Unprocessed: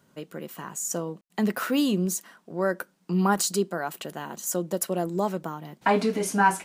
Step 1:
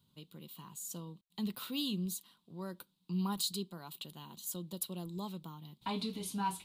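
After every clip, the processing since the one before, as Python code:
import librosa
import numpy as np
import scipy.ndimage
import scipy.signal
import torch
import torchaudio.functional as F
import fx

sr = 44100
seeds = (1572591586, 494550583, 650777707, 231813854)

y = fx.curve_eq(x, sr, hz=(100.0, 670.0, 990.0, 1700.0, 3800.0, 5800.0, 12000.0), db=(0, -22, -10, -24, 5, -14, -4))
y = F.gain(torch.from_numpy(y), -3.0).numpy()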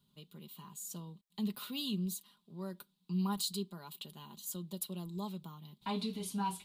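y = x + 0.47 * np.pad(x, (int(4.9 * sr / 1000.0), 0))[:len(x)]
y = F.gain(torch.from_numpy(y), -2.0).numpy()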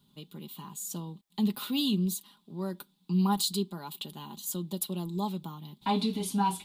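y = fx.small_body(x, sr, hz=(290.0, 820.0, 3500.0), ring_ms=30, db=7)
y = F.gain(torch.from_numpy(y), 6.5).numpy()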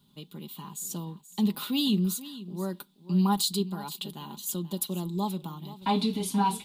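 y = x + 10.0 ** (-15.5 / 20.0) * np.pad(x, (int(479 * sr / 1000.0), 0))[:len(x)]
y = F.gain(torch.from_numpy(y), 2.0).numpy()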